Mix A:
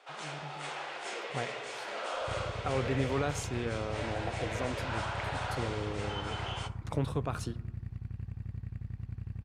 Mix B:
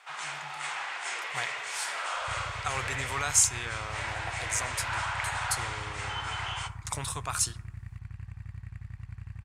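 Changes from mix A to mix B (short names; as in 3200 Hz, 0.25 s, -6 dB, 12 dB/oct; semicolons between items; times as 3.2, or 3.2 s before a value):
speech: add tone controls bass -5 dB, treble +15 dB; master: add graphic EQ 250/500/1000/2000/8000 Hz -11/-9/+6/+7/+9 dB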